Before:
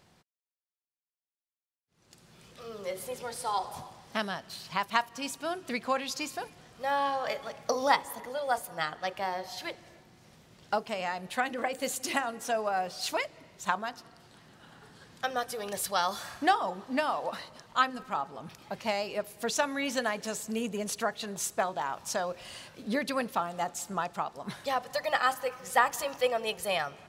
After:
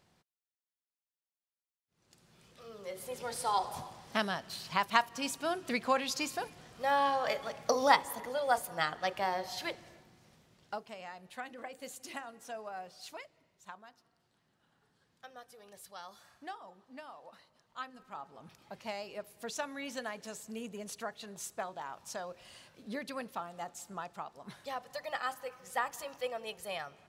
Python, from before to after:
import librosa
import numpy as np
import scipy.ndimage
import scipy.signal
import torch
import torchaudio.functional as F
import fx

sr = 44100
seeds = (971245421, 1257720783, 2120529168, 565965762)

y = fx.gain(x, sr, db=fx.line((2.88, -7.0), (3.34, 0.0), (9.73, 0.0), (10.99, -13.0), (12.8, -13.0), (13.73, -19.5), (17.55, -19.5), (18.44, -9.5)))